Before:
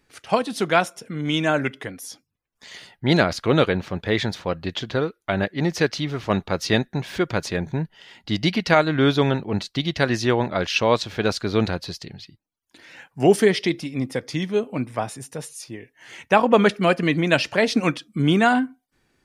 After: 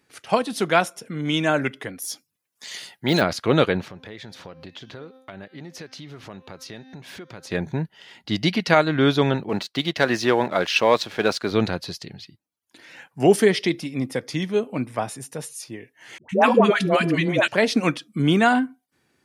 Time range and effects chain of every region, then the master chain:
0:02.02–0:03.22: high-pass filter 160 Hz 6 dB per octave + de-essing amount 75% + high-shelf EQ 3,300 Hz +11 dB
0:03.85–0:07.51: hum removal 260.9 Hz, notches 25 + downward compressor 5 to 1, threshold −37 dBFS
0:09.49–0:11.51: high-pass filter 320 Hz 6 dB per octave + high-shelf EQ 4,800 Hz −7 dB + leveller curve on the samples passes 1
0:16.18–0:17.48: hum removal 337.5 Hz, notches 12 + all-pass dispersion highs, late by 113 ms, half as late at 610 Hz
whole clip: high-pass filter 100 Hz; parametric band 11,000 Hz +4 dB 0.42 octaves

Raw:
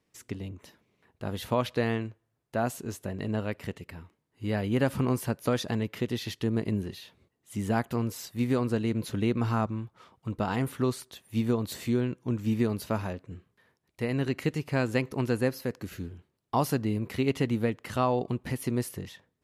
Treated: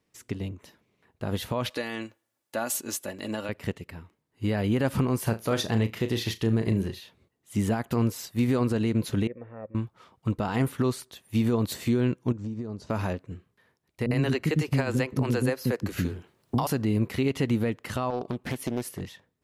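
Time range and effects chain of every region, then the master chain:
0:01.70–0:03.49: high-pass filter 420 Hz 6 dB per octave + high-shelf EQ 3,500 Hz +8.5 dB + comb filter 3.5 ms, depth 45%
0:05.19–0:07.00: parametric band 250 Hz −3 dB 0.44 octaves + flutter between parallel walls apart 6.1 metres, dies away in 0.21 s
0:09.27–0:09.75: formant resonators in series e + notch filter 2,500 Hz, Q 10
0:12.32–0:12.90: low-pass filter 6,700 Hz 24 dB per octave + parametric band 2,600 Hz −13 dB 1.8 octaves + downward compressor 16 to 1, threshold −34 dBFS
0:14.06–0:16.67: multiband delay without the direct sound lows, highs 50 ms, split 320 Hz + multiband upward and downward compressor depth 70%
0:18.10–0:19.01: low-shelf EQ 84 Hz −10 dB + downward compressor 2.5 to 1, threshold −32 dBFS + highs frequency-modulated by the lows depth 0.39 ms
whole clip: brickwall limiter −24 dBFS; expander for the loud parts 1.5 to 1, over −45 dBFS; level +8.5 dB

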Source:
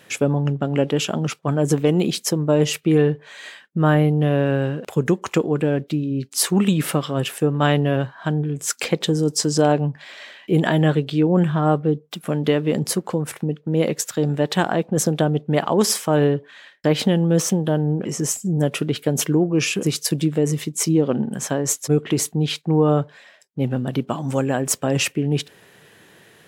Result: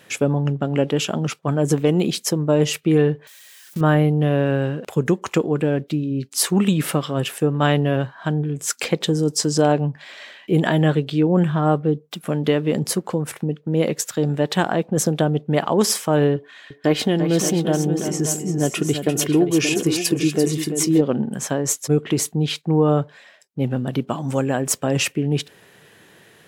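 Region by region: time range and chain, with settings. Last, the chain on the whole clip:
0:03.27–0:03.81: spike at every zero crossing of −17.5 dBFS + high-shelf EQ 11,000 Hz −4.5 dB + output level in coarse steps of 23 dB
0:16.36–0:21.01: comb filter 2.8 ms, depth 35% + multi-tap delay 343/579 ms −8.5/−10 dB
whole clip: no processing

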